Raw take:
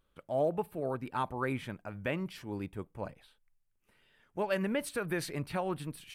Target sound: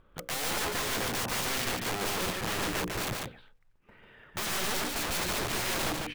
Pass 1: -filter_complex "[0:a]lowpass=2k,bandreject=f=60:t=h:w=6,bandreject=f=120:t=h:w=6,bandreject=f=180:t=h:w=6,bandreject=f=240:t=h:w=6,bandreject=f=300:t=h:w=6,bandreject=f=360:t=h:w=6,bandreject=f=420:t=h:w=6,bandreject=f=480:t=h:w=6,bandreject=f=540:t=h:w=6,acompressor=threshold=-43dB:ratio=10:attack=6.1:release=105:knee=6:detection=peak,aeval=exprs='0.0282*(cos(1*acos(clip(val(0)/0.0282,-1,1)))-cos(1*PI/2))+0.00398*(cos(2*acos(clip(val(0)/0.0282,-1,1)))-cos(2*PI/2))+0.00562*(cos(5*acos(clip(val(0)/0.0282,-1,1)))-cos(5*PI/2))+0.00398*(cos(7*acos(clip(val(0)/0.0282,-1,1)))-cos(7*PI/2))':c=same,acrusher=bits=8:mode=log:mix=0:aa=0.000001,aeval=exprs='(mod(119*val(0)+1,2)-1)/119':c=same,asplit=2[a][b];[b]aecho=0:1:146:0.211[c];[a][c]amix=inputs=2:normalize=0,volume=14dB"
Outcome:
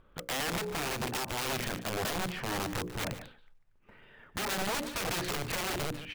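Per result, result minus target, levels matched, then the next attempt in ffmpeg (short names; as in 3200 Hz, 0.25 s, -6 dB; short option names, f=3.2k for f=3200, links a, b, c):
compressor: peak gain reduction +11 dB; echo-to-direct -10.5 dB
-filter_complex "[0:a]lowpass=2k,bandreject=f=60:t=h:w=6,bandreject=f=120:t=h:w=6,bandreject=f=180:t=h:w=6,bandreject=f=240:t=h:w=6,bandreject=f=300:t=h:w=6,bandreject=f=360:t=h:w=6,bandreject=f=420:t=h:w=6,bandreject=f=480:t=h:w=6,bandreject=f=540:t=h:w=6,acompressor=threshold=-31dB:ratio=10:attack=6.1:release=105:knee=6:detection=peak,aeval=exprs='0.0282*(cos(1*acos(clip(val(0)/0.0282,-1,1)))-cos(1*PI/2))+0.00398*(cos(2*acos(clip(val(0)/0.0282,-1,1)))-cos(2*PI/2))+0.00562*(cos(5*acos(clip(val(0)/0.0282,-1,1)))-cos(5*PI/2))+0.00398*(cos(7*acos(clip(val(0)/0.0282,-1,1)))-cos(7*PI/2))':c=same,acrusher=bits=8:mode=log:mix=0:aa=0.000001,aeval=exprs='(mod(119*val(0)+1,2)-1)/119':c=same,asplit=2[a][b];[b]aecho=0:1:146:0.211[c];[a][c]amix=inputs=2:normalize=0,volume=14dB"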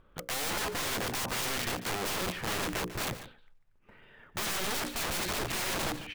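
echo-to-direct -10.5 dB
-filter_complex "[0:a]lowpass=2k,bandreject=f=60:t=h:w=6,bandreject=f=120:t=h:w=6,bandreject=f=180:t=h:w=6,bandreject=f=240:t=h:w=6,bandreject=f=300:t=h:w=6,bandreject=f=360:t=h:w=6,bandreject=f=420:t=h:w=6,bandreject=f=480:t=h:w=6,bandreject=f=540:t=h:w=6,acompressor=threshold=-31dB:ratio=10:attack=6.1:release=105:knee=6:detection=peak,aeval=exprs='0.0282*(cos(1*acos(clip(val(0)/0.0282,-1,1)))-cos(1*PI/2))+0.00398*(cos(2*acos(clip(val(0)/0.0282,-1,1)))-cos(2*PI/2))+0.00562*(cos(5*acos(clip(val(0)/0.0282,-1,1)))-cos(5*PI/2))+0.00398*(cos(7*acos(clip(val(0)/0.0282,-1,1)))-cos(7*PI/2))':c=same,acrusher=bits=8:mode=log:mix=0:aa=0.000001,aeval=exprs='(mod(119*val(0)+1,2)-1)/119':c=same,asplit=2[a][b];[b]aecho=0:1:146:0.708[c];[a][c]amix=inputs=2:normalize=0,volume=14dB"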